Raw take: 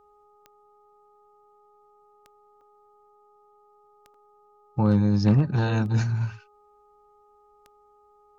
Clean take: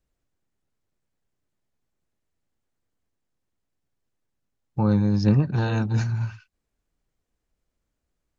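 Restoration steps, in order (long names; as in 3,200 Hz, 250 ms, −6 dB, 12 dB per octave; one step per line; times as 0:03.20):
clipped peaks rebuilt −12 dBFS
click removal
hum removal 414.9 Hz, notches 3
repair the gap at 0:02.61/0:04.14, 3.4 ms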